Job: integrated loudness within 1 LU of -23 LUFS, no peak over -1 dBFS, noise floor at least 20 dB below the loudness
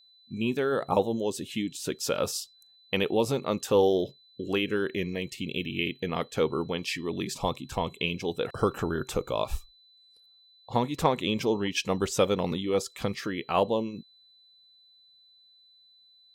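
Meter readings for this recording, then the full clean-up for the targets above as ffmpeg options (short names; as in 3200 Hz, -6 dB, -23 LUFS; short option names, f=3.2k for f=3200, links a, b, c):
steady tone 4000 Hz; tone level -57 dBFS; loudness -29.0 LUFS; peak -9.5 dBFS; loudness target -23.0 LUFS
-> -af "bandreject=f=4k:w=30"
-af "volume=6dB"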